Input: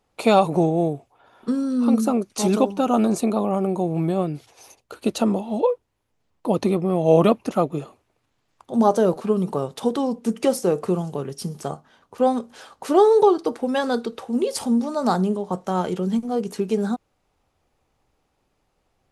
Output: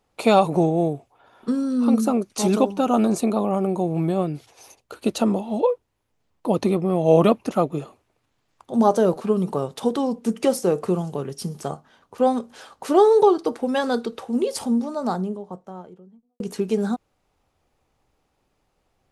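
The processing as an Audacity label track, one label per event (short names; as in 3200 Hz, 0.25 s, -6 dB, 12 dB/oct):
14.230000	16.400000	studio fade out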